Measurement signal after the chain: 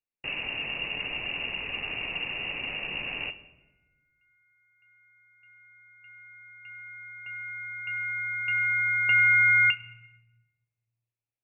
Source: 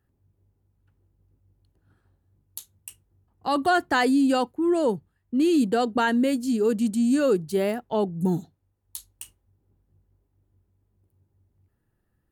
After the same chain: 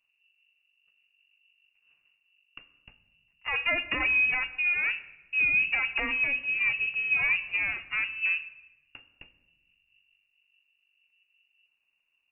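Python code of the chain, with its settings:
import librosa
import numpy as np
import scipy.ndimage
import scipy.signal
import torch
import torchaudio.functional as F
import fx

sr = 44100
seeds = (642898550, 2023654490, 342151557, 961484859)

y = fx.lower_of_two(x, sr, delay_ms=0.37)
y = fx.freq_invert(y, sr, carrier_hz=2800)
y = fx.room_shoebox(y, sr, seeds[0], volume_m3=550.0, walls='mixed', distance_m=0.37)
y = y * librosa.db_to_amplitude(-4.5)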